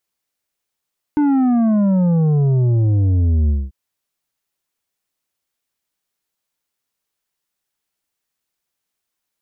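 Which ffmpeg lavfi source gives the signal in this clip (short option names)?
-f lavfi -i "aevalsrc='0.224*clip((2.54-t)/0.22,0,1)*tanh(2.37*sin(2*PI*300*2.54/log(65/300)*(exp(log(65/300)*t/2.54)-1)))/tanh(2.37)':d=2.54:s=44100"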